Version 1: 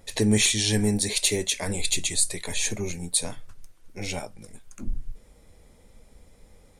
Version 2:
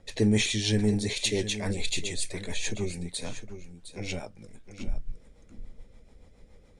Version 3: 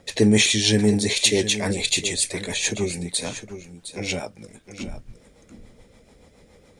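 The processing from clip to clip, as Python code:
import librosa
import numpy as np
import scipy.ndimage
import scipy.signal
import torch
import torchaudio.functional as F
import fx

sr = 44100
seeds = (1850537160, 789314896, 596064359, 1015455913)

y1 = fx.rotary(x, sr, hz=7.0)
y1 = fx.air_absorb(y1, sr, metres=74.0)
y1 = y1 + 10.0 ** (-12.0 / 20.0) * np.pad(y1, (int(711 * sr / 1000.0), 0))[:len(y1)]
y2 = fx.highpass(y1, sr, hz=160.0, slope=6)
y2 = fx.high_shelf(y2, sr, hz=7400.0, db=4.5)
y2 = y2 * librosa.db_to_amplitude(8.5)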